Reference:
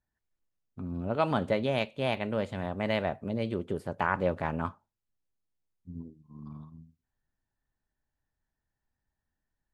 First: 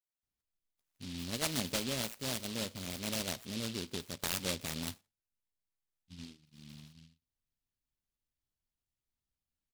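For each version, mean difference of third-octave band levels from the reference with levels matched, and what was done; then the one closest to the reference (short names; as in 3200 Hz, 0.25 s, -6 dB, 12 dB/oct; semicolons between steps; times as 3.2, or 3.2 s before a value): 16.5 dB: high shelf 2700 Hz +7 dB; bands offset in time highs, lows 0.23 s, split 3000 Hz; dynamic EQ 250 Hz, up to +4 dB, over -45 dBFS, Q 3.2; noise-modulated delay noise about 3600 Hz, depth 0.32 ms; gain -8.5 dB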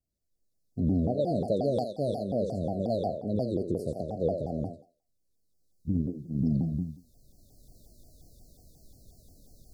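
10.0 dB: recorder AGC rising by 12 dB/s; brick-wall FIR band-stop 720–3900 Hz; thinning echo 86 ms, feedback 30%, high-pass 390 Hz, level -4 dB; shaped vibrato saw down 5.6 Hz, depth 250 cents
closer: second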